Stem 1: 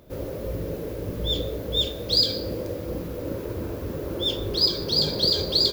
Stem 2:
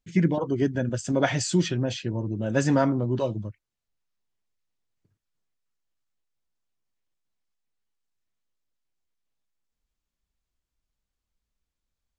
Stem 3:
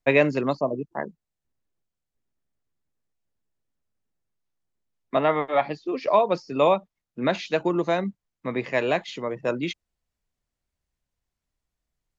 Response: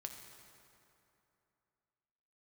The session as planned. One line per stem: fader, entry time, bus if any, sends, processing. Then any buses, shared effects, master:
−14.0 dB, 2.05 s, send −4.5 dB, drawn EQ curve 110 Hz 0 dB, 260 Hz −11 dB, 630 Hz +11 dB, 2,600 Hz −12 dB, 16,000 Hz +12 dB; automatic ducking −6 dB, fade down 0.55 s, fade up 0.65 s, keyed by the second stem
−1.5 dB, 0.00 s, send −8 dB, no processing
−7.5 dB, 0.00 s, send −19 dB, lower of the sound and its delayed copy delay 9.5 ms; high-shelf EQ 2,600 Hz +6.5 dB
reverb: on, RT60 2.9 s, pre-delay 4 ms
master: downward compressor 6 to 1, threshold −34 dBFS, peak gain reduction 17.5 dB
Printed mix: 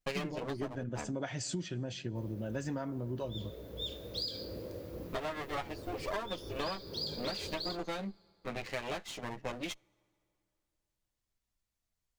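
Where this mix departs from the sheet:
stem 1: missing drawn EQ curve 110 Hz 0 dB, 260 Hz −11 dB, 630 Hz +11 dB, 2,600 Hz −12 dB, 16,000 Hz +12 dB
stem 2 −1.5 dB → −7.5 dB
reverb return −6.5 dB

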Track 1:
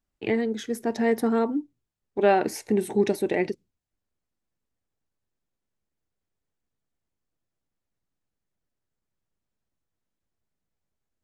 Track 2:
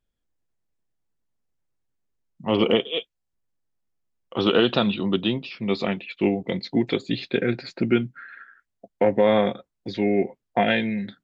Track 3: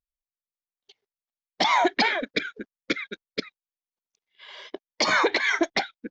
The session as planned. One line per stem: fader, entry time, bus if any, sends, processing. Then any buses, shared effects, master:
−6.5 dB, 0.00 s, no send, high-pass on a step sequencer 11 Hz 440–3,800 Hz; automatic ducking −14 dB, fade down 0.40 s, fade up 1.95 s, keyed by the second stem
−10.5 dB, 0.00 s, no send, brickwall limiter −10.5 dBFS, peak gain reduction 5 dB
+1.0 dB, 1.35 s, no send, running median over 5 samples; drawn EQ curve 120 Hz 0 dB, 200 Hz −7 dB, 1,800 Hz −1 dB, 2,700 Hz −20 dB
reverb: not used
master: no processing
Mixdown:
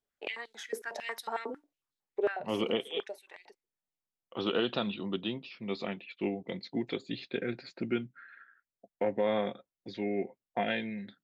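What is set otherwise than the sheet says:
stem 2: missing brickwall limiter −10.5 dBFS, peak gain reduction 5 dB
stem 3: muted
master: extra low-shelf EQ 87 Hz −11 dB

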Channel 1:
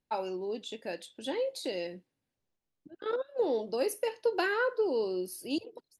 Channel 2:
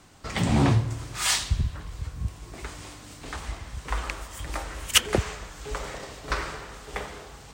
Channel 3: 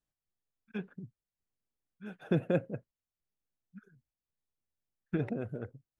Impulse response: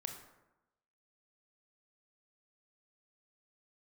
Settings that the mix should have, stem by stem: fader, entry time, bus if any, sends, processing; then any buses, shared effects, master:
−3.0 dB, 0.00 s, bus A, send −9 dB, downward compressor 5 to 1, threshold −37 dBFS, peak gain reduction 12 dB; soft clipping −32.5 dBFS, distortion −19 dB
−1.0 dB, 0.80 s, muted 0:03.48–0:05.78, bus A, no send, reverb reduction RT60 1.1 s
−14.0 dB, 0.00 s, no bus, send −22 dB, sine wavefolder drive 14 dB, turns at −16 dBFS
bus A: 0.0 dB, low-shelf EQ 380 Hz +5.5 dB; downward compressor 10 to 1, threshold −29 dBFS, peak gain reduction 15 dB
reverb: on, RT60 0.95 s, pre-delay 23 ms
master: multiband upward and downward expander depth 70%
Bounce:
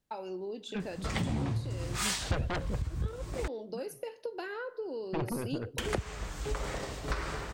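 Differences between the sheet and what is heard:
stem 1: missing soft clipping −32.5 dBFS, distortion −19 dB
stem 2: missing reverb reduction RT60 1.1 s
master: missing multiband upward and downward expander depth 70%

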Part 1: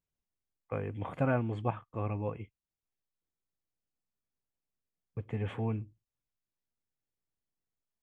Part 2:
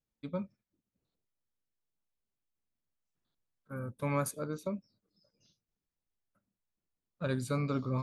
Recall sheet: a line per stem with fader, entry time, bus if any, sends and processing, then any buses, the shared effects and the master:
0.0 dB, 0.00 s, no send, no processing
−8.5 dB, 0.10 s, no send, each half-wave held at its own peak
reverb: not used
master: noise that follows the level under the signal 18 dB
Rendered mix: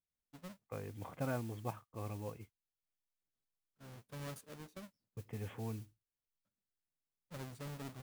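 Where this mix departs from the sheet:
stem 1 0.0 dB → −9.0 dB
stem 2 −8.5 dB → −18.5 dB

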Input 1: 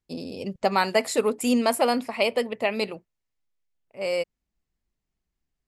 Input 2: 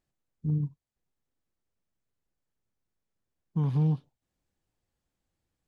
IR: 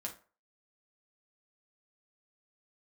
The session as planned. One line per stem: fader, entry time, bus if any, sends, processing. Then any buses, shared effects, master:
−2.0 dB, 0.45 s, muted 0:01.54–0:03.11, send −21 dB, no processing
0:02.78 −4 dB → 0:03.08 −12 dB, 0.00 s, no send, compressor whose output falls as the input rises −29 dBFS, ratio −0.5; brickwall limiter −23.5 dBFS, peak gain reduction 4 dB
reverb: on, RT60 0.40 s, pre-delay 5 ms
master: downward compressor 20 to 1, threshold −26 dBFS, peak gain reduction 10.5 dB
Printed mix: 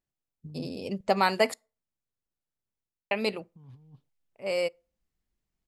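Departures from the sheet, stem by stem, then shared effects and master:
stem 2 −4.0 dB → −11.5 dB
master: missing downward compressor 20 to 1, threshold −26 dBFS, peak gain reduction 10.5 dB

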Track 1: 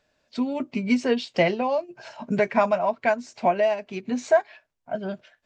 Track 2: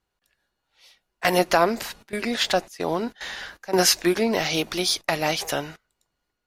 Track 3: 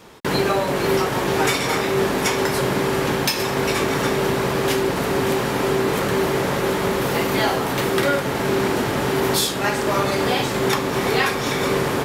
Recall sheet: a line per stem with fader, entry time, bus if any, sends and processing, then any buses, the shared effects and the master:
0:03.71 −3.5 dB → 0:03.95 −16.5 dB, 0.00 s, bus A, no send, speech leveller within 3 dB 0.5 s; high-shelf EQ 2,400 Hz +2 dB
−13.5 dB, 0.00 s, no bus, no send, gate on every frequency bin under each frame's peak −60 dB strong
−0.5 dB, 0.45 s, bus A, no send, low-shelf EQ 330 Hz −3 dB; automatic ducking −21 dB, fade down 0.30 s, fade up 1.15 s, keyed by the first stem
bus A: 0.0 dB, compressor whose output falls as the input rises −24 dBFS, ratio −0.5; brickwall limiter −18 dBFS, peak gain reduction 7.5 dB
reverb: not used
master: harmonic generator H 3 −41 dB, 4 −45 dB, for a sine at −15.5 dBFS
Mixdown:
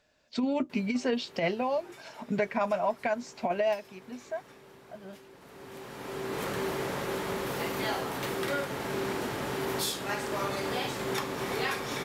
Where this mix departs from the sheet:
stem 2: muted
stem 3 −0.5 dB → −11.5 dB

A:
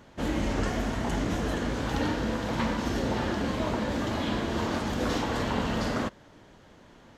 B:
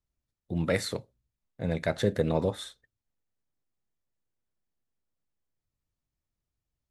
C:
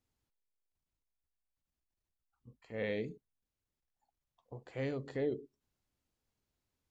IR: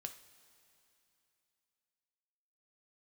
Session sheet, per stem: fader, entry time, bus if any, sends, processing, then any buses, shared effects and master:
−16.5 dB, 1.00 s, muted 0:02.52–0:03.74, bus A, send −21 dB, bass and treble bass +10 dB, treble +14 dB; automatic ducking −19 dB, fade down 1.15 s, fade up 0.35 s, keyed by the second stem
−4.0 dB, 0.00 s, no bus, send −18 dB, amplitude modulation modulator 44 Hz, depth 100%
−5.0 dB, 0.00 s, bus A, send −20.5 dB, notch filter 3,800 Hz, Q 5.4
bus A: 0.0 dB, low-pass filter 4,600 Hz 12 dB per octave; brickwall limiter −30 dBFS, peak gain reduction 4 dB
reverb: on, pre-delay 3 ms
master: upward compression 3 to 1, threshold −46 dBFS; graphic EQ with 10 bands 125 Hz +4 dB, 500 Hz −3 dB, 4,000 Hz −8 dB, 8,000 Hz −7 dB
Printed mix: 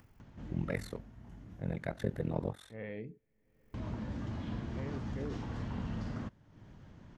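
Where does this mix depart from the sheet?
stem A: entry 1.00 s → 0.20 s
stem B: send off

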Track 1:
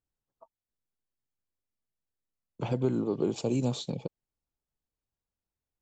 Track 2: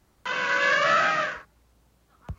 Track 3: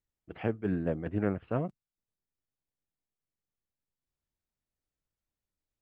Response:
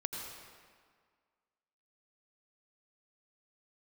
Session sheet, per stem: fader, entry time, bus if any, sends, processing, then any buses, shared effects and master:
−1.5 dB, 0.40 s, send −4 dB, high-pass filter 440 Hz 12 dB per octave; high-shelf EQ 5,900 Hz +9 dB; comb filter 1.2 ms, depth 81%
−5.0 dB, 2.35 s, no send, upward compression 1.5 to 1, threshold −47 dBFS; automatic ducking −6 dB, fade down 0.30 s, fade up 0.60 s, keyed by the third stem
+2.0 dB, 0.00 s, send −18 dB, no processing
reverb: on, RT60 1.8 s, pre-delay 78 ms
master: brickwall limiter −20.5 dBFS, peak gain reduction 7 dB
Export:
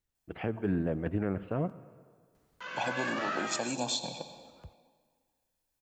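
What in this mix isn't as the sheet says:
stem 1: entry 0.40 s → 0.15 s
stem 2 −5.0 dB → −13.5 dB

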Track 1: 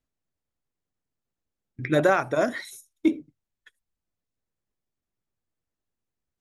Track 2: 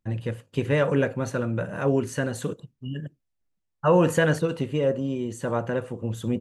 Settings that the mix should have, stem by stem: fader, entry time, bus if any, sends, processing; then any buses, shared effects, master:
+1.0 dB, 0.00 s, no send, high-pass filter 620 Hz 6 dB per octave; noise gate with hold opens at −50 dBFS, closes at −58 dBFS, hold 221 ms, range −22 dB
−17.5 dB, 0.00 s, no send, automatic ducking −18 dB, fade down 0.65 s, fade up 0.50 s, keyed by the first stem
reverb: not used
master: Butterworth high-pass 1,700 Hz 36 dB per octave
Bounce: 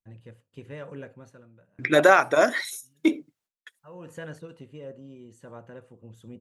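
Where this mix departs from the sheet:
stem 1 +1.0 dB → +7.0 dB
master: missing Butterworth high-pass 1,700 Hz 36 dB per octave

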